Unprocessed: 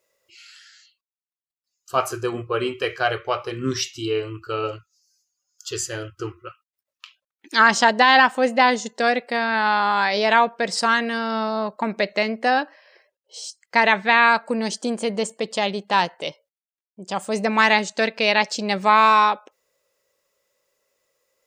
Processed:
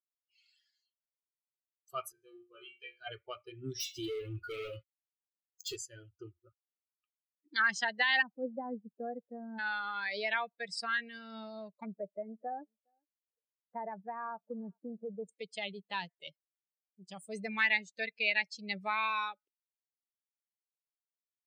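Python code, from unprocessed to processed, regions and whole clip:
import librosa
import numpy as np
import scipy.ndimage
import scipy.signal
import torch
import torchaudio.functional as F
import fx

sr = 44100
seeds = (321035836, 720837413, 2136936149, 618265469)

y = fx.chain(x, sr, fx.high_shelf(hz=2000.0, db=6.0),
    fx.comb_fb(f0_hz=71.0, decay_s=0.47, harmonics='all', damping=0.0, mix_pct=100), at=(2.12, 3.07))
y = fx.chain(y, sr, fx.comb_fb(f0_hz=90.0, decay_s=0.28, harmonics='all', damping=0.0, mix_pct=70),
    fx.leveller(passes=5), at=(3.8, 5.76))
y = fx.chain(y, sr, fx.lowpass(hz=1100.0, slope=12),
    fx.low_shelf(hz=260.0, db=7.0), at=(6.43, 7.56))
y = fx.chain(y, sr, fx.gaussian_blur(sigma=8.3),
    fx.low_shelf(hz=220.0, db=9.5), at=(8.22, 9.59))
y = fx.chain(y, sr, fx.lowpass(hz=1100.0, slope=24),
    fx.echo_single(ms=410, db=-22.5), at=(11.85, 15.29))
y = fx.bin_expand(y, sr, power=2.0)
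y = fx.graphic_eq_10(y, sr, hz=(250, 500, 1000, 2000, 8000), db=(-7, -4, -9, 8, -6))
y = fx.band_squash(y, sr, depth_pct=40)
y = F.gain(torch.from_numpy(y), -8.0).numpy()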